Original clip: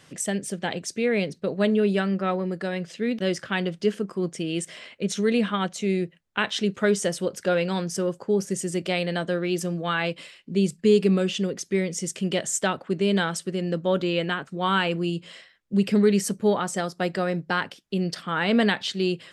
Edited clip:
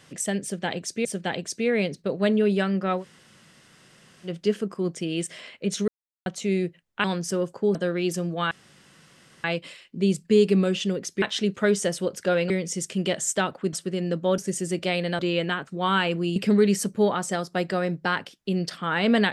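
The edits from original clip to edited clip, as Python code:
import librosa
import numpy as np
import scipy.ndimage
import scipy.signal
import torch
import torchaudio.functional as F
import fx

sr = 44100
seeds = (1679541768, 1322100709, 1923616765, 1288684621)

y = fx.edit(x, sr, fx.repeat(start_s=0.43, length_s=0.62, count=2),
    fx.room_tone_fill(start_s=2.38, length_s=1.28, crossfade_s=0.1),
    fx.silence(start_s=5.26, length_s=0.38),
    fx.move(start_s=6.42, length_s=1.28, to_s=11.76),
    fx.move(start_s=8.41, length_s=0.81, to_s=13.99),
    fx.insert_room_tone(at_s=9.98, length_s=0.93),
    fx.cut(start_s=12.99, length_s=0.35),
    fx.cut(start_s=15.16, length_s=0.65), tone=tone)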